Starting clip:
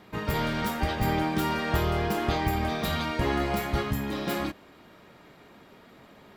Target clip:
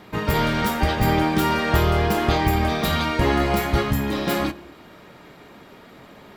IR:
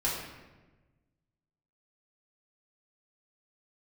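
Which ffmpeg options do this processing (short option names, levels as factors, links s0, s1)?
-filter_complex "[0:a]asplit=2[s0][s1];[1:a]atrim=start_sample=2205,afade=t=out:st=0.34:d=0.01,atrim=end_sample=15435,asetrate=48510,aresample=44100[s2];[s1][s2]afir=irnorm=-1:irlink=0,volume=0.0708[s3];[s0][s3]amix=inputs=2:normalize=0,volume=2.11"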